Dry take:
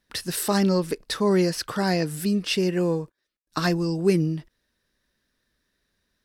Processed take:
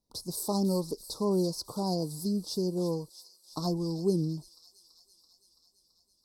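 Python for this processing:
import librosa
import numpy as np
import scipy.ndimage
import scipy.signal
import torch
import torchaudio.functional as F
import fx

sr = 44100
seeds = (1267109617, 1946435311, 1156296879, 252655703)

y = scipy.signal.sosfilt(scipy.signal.ellip(3, 1.0, 60, [990.0, 4400.0], 'bandstop', fs=sr, output='sos'), x)
y = fx.echo_wet_highpass(y, sr, ms=333, feedback_pct=72, hz=3400.0, wet_db=-10)
y = y * librosa.db_to_amplitude(-6.5)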